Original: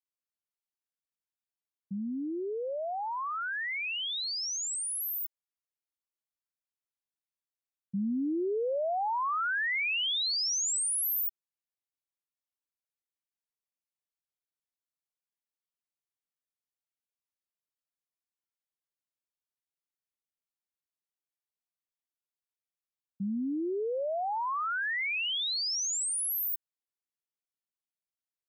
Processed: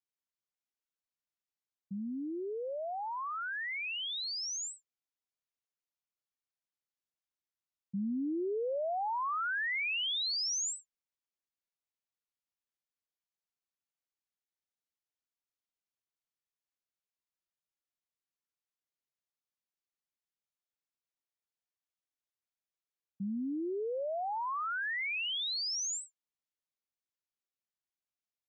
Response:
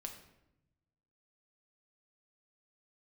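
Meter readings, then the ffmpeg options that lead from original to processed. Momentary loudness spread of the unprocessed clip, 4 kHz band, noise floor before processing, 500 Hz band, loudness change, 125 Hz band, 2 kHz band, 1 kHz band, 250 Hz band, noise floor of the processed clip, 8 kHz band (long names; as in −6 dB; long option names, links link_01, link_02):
8 LU, −3.5 dB, below −85 dBFS, −3.5 dB, −4.0 dB, −3.5 dB, −3.5 dB, −3.5 dB, −3.5 dB, below −85 dBFS, −7.0 dB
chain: -af "aresample=16000,aresample=44100,volume=-3.5dB"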